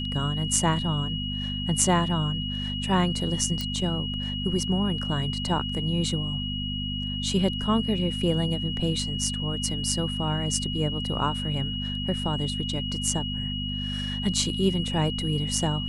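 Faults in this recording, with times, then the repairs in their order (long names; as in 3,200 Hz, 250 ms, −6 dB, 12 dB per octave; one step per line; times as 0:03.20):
mains hum 50 Hz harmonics 5 −32 dBFS
whistle 2,900 Hz −32 dBFS
0:03.61: click −16 dBFS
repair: click removal
hum removal 50 Hz, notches 5
notch filter 2,900 Hz, Q 30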